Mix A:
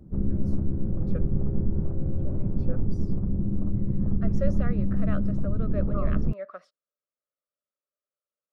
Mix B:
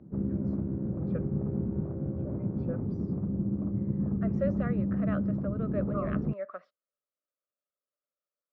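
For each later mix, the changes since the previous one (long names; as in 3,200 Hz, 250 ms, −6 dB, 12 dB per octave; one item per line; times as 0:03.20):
master: add band-pass filter 130–2,500 Hz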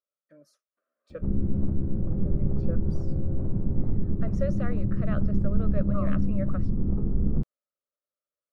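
background: entry +1.10 s
master: remove band-pass filter 130–2,500 Hz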